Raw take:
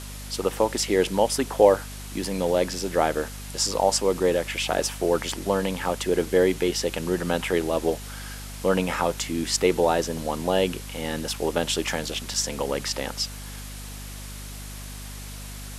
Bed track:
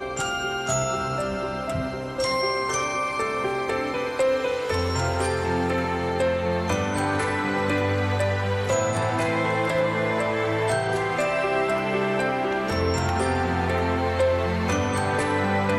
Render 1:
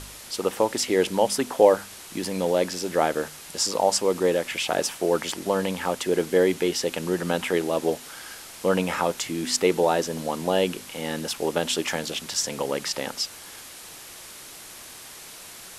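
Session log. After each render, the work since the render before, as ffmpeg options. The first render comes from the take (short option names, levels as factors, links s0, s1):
-af "bandreject=f=50:t=h:w=4,bandreject=f=100:t=h:w=4,bandreject=f=150:t=h:w=4,bandreject=f=200:t=h:w=4,bandreject=f=250:t=h:w=4"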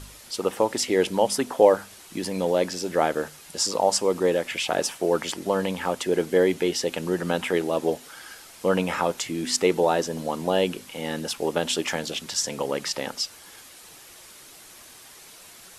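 -af "afftdn=nr=6:nf=-43"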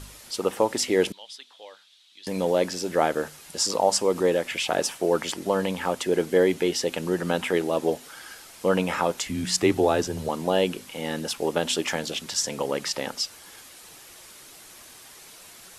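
-filter_complex "[0:a]asettb=1/sr,asplit=3[s0][s1][s2];[s0]atrim=end=1.124[s3];[s1]atrim=start=1.12:end=2.27,asetpts=PTS-STARTPTS,afade=t=in:d=0.004:c=qsin,afade=t=out:st=1.146:d=0.004:c=qsin,bandpass=f=3600:t=q:w=4.9[s4];[s2]atrim=start=2.266[s5];[s3][s4]acrossfade=d=0.004:c1=hsin:c2=qsin[s6];[s6][s5]acrossfade=d=0.004:c1=qsin:c2=hsin,asettb=1/sr,asplit=3[s7][s8][s9];[s7]atrim=end=3.704[s10];[s8]atrim=start=3.7:end=4.38,asetpts=PTS-STARTPTS,afade=t=in:d=0.004:c=qsin,afade=t=out:st=0.676:d=0.004:c=qsin,acompressor=mode=upward:threshold=0.0631:ratio=2.5:attack=3.2:release=140:knee=2.83:detection=peak[s11];[s9]atrim=start=4.376[s12];[s10][s11]acrossfade=d=0.004:c1=hsin:c2=qsin[s13];[s13][s12]acrossfade=d=0.004:c1=qsin:c2=hsin,asettb=1/sr,asplit=3[s14][s15][s16];[s14]atrim=end=9.254[s17];[s15]atrim=start=9.25:end=10.29,asetpts=PTS-STARTPTS,afade=t=in:d=0.004:c=qsin,afade=t=out:st=1.036:d=0.004:c=qsin,afreqshift=-69[s18];[s16]atrim=start=10.286[s19];[s17][s18]acrossfade=d=0.004:c1=hsin:c2=qsin[s20];[s20][s19]acrossfade=d=0.004:c1=qsin:c2=hsin"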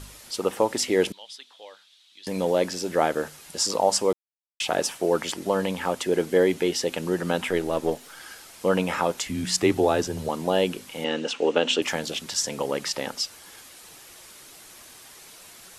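-filter_complex "[0:a]asettb=1/sr,asplit=3[s0][s1][s2];[s0]atrim=end=7.494[s3];[s1]atrim=start=7.49:end=8.2,asetpts=PTS-STARTPTS,afade=t=in:d=0.004:c=qsin,afade=t=out:st=0.706:d=0.004:c=qsin,aeval=exprs='if(lt(val(0),0),0.708*val(0),val(0))':c=same[s4];[s2]atrim=start=8.196[s5];[s3][s4]acrossfade=d=0.004:c1=hsin:c2=qsin[s6];[s6][s5]acrossfade=d=0.004:c1=qsin:c2=hsin,asettb=1/sr,asplit=3[s7][s8][s9];[s7]atrim=end=11.044[s10];[s8]atrim=start=11.04:end=11.82,asetpts=PTS-STARTPTS,afade=t=in:d=0.004:c=qsin,afade=t=out:st=0.776:d=0.004:c=qsin,highpass=220,equalizer=f=270:t=q:w=4:g=6,equalizer=f=480:t=q:w=4:g=7,equalizer=f=1400:t=q:w=4:g=3,equalizer=f=2800:t=q:w=4:g=9,equalizer=f=5000:t=q:w=4:g=-5,lowpass=f=6700:w=0.5412,lowpass=f=6700:w=1.3066[s11];[s9]atrim=start=11.816[s12];[s10][s11]acrossfade=d=0.004:c1=hsin:c2=qsin[s13];[s13][s12]acrossfade=d=0.004:c1=qsin:c2=hsin,asplit=3[s14][s15][s16];[s14]atrim=end=4.13,asetpts=PTS-STARTPTS,afade=t=out:st=4.126:d=0.004:c=hsin[s17];[s15]atrim=start=4.13:end=4.6,asetpts=PTS-STARTPTS,volume=0[s18];[s16]atrim=start=4.6,asetpts=PTS-STARTPTS,afade=t=in:d=0.004:c=hsin[s19];[s17][s18][s19]concat=n=3:v=0:a=1"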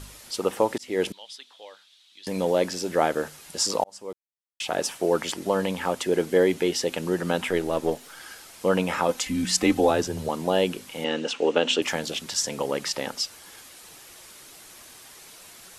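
-filter_complex "[0:a]asettb=1/sr,asplit=3[s0][s1][s2];[s0]atrim=end=9.084[s3];[s1]atrim=start=9.08:end=9.91,asetpts=PTS-STARTPTS,afade=t=in:d=0.004:c=qsin,afade=t=out:st=0.826:d=0.004:c=qsin,aecho=1:1:3.9:0.65,atrim=end_sample=36603[s4];[s2]atrim=start=9.906[s5];[s3][s4]acrossfade=d=0.004:c1=hsin:c2=qsin[s6];[s6][s5]acrossfade=d=0.004:c1=qsin:c2=hsin,asplit=3[s7][s8][s9];[s7]atrim=end=0.78,asetpts=PTS-STARTPTS,afade=t=out:st=0.776:d=0.004:c=hsin[s10];[s8]atrim=start=0.78:end=3.84,asetpts=PTS-STARTPTS,afade=t=in:d=0.46:c=qsin,afade=t=out:st=3.056:d=0.004:c=hsin[s11];[s9]atrim=start=3.84,asetpts=PTS-STARTPTS,afade=t=in:d=1.18[s12];[s10][s11][s12]concat=n=3:v=0:a=1"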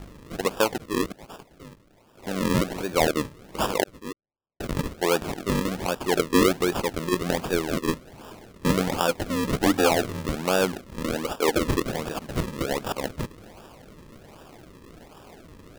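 -af "acrusher=samples=41:mix=1:aa=0.000001:lfo=1:lforange=41:lforate=1.3"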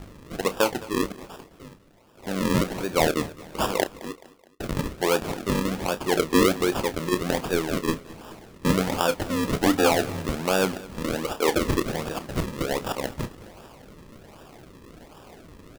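-filter_complex "[0:a]asplit=2[s0][s1];[s1]adelay=31,volume=0.251[s2];[s0][s2]amix=inputs=2:normalize=0,aecho=1:1:213|426|639:0.106|0.0477|0.0214"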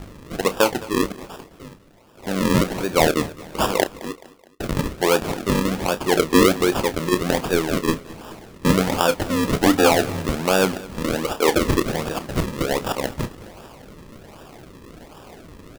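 -af "volume=1.68"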